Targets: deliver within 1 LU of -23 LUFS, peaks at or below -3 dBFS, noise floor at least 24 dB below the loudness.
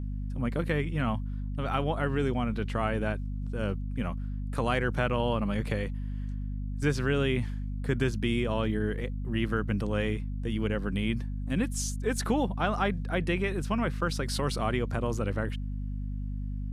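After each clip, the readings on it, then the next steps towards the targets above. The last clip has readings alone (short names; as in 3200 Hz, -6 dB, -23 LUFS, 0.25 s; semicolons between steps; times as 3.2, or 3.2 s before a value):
hum 50 Hz; harmonics up to 250 Hz; hum level -31 dBFS; loudness -30.5 LUFS; peak -12.0 dBFS; loudness target -23.0 LUFS
-> notches 50/100/150/200/250 Hz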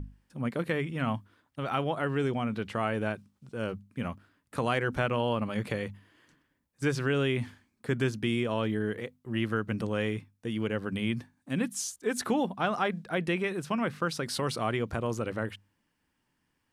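hum none; loudness -31.5 LUFS; peak -13.0 dBFS; loudness target -23.0 LUFS
-> gain +8.5 dB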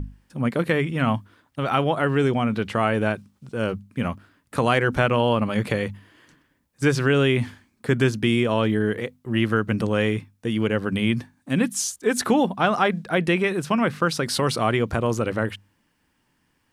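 loudness -23.0 LUFS; peak -4.5 dBFS; noise floor -69 dBFS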